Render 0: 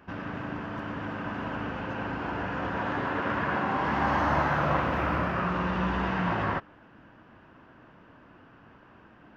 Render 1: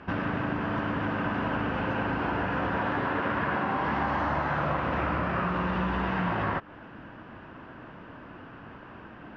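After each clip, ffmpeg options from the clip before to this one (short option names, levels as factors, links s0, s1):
-af "lowpass=4500,acompressor=threshold=0.02:ratio=6,volume=2.66"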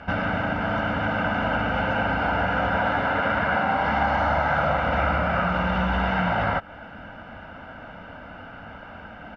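-af "equalizer=f=130:t=o:w=0.58:g=-9,aecho=1:1:1.4:0.73,volume=1.68"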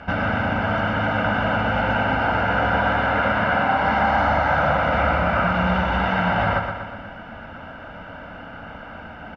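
-af "aecho=1:1:121|242|363|484|605|726|847:0.473|0.27|0.154|0.0876|0.0499|0.0285|0.0162,volume=1.26"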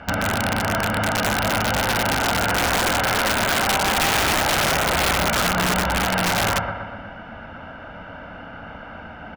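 -af "aeval=exprs='(mod(4.73*val(0)+1,2)-1)/4.73':c=same"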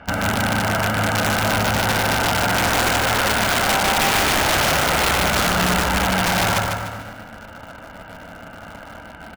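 -filter_complex "[0:a]asplit=2[s0][s1];[s1]acrusher=bits=4:mix=0:aa=0.000001,volume=0.473[s2];[s0][s2]amix=inputs=2:normalize=0,aecho=1:1:149|298|447|596:0.562|0.197|0.0689|0.0241,volume=0.708"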